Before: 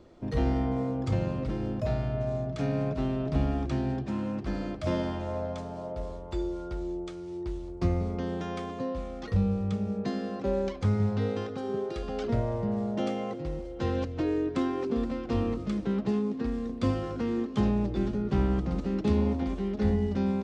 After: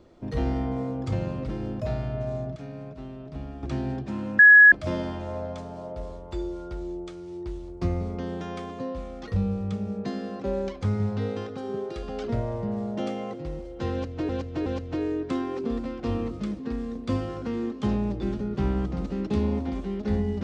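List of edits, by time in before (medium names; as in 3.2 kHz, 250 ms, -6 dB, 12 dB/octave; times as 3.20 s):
2.56–3.63 s: gain -10 dB
4.39–4.72 s: bleep 1.68 kHz -8.5 dBFS
13.92–14.29 s: loop, 3 plays
15.85–16.33 s: delete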